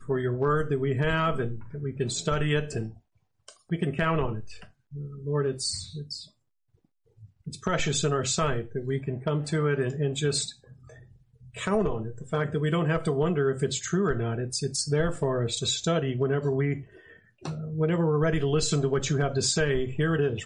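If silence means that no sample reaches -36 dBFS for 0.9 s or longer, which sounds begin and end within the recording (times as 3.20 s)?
7.47–10.51 s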